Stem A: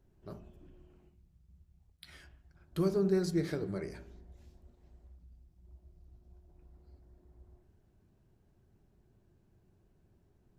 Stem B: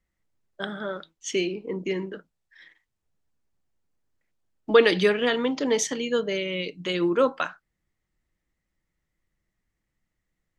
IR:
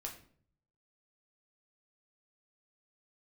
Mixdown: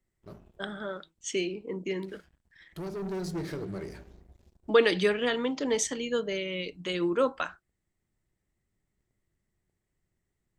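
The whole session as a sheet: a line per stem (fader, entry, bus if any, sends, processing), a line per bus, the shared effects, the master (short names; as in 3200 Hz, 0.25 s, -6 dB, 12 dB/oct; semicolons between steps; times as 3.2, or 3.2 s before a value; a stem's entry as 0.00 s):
-9.0 dB, 0.00 s, no send, sample leveller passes 3; auto duck -6 dB, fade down 0.60 s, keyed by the second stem
-4.5 dB, 0.00 s, no send, bell 8100 Hz +8.5 dB 0.31 oct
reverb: off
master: dry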